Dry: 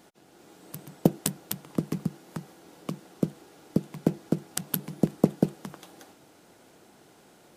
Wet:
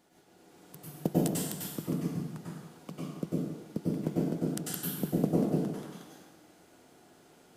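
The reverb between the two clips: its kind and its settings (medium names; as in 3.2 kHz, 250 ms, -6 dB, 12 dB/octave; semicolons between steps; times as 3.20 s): plate-style reverb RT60 1.1 s, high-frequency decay 0.9×, pre-delay 85 ms, DRR -6.5 dB; trim -10.5 dB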